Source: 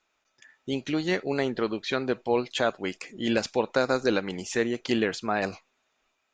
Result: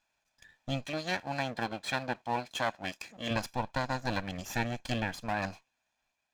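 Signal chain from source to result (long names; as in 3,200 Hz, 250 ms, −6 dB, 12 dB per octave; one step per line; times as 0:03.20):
lower of the sound and its delayed copy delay 1.2 ms
0:00.86–0:03.31: high-pass filter 290 Hz 6 dB per octave
speech leveller within 4 dB 0.5 s
level −5 dB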